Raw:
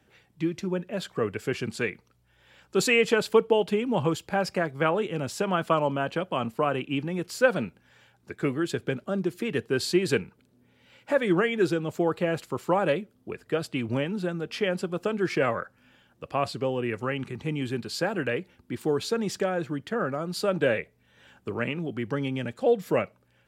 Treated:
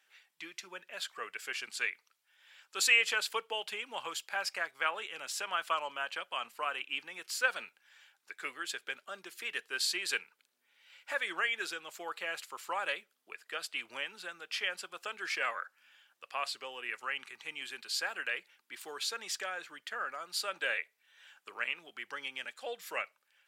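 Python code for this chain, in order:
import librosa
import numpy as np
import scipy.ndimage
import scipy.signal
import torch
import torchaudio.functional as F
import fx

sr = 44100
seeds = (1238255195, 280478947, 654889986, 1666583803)

y = scipy.signal.sosfilt(scipy.signal.butter(2, 1500.0, 'highpass', fs=sr, output='sos'), x)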